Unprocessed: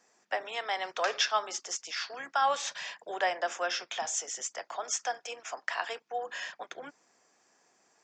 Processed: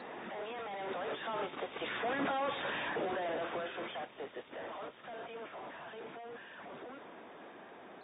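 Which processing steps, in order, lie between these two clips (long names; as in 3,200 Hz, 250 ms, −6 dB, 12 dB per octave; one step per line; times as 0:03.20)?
sign of each sample alone
source passing by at 0:02.33, 12 m/s, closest 6.5 metres
high-pass filter 280 Hz 12 dB per octave
spectral tilt −3.5 dB per octave
in parallel at +2.5 dB: brickwall limiter −37 dBFS, peak gain reduction 9 dB
on the sum: level −3.5 dB
AAC 16 kbit/s 32,000 Hz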